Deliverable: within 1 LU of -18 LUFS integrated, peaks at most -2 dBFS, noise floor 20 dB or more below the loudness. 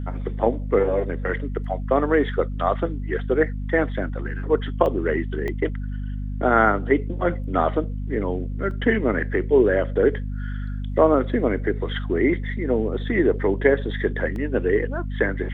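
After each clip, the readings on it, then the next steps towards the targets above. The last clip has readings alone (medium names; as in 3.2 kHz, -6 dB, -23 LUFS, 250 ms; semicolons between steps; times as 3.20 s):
dropouts 4; longest dropout 1.2 ms; hum 50 Hz; highest harmonic 250 Hz; hum level -26 dBFS; loudness -23.0 LUFS; peak level -3.0 dBFS; loudness target -18.0 LUFS
-> interpolate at 4.86/5.48/8.71/14.36 s, 1.2 ms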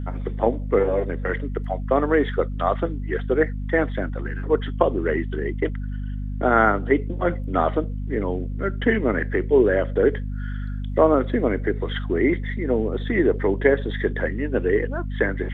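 dropouts 0; hum 50 Hz; highest harmonic 250 Hz; hum level -26 dBFS
-> hum notches 50/100/150/200/250 Hz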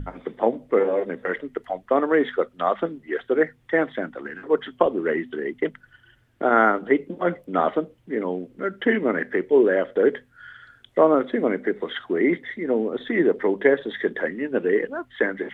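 hum not found; loudness -23.5 LUFS; peak level -3.5 dBFS; loudness target -18.0 LUFS
-> trim +5.5 dB; peak limiter -2 dBFS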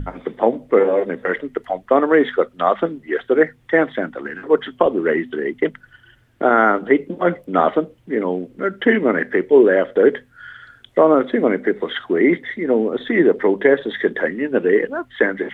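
loudness -18.0 LUFS; peak level -2.0 dBFS; noise floor -54 dBFS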